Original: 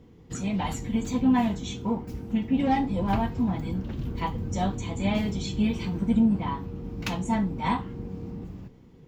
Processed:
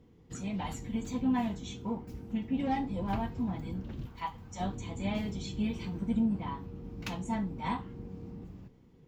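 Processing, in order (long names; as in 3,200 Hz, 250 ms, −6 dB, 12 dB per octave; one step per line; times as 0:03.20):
0:04.06–0:04.60: low shelf with overshoot 620 Hz −9.5 dB, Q 1.5
level −7.5 dB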